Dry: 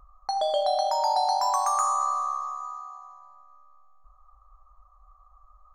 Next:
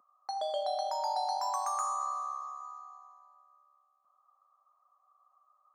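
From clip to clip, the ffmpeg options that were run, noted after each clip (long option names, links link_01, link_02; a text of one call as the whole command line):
ffmpeg -i in.wav -af "highpass=frequency=230:width=0.5412,highpass=frequency=230:width=1.3066,volume=-8.5dB" out.wav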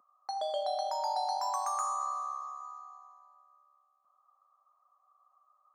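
ffmpeg -i in.wav -af anull out.wav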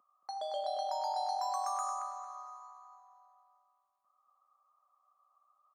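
ffmpeg -i in.wav -filter_complex "[0:a]asplit=2[link_01][link_02];[link_02]adelay=227,lowpass=frequency=4400:poles=1,volume=-4.5dB,asplit=2[link_03][link_04];[link_04]adelay=227,lowpass=frequency=4400:poles=1,volume=0.33,asplit=2[link_05][link_06];[link_06]adelay=227,lowpass=frequency=4400:poles=1,volume=0.33,asplit=2[link_07][link_08];[link_08]adelay=227,lowpass=frequency=4400:poles=1,volume=0.33[link_09];[link_01][link_03][link_05][link_07][link_09]amix=inputs=5:normalize=0,volume=-4.5dB" out.wav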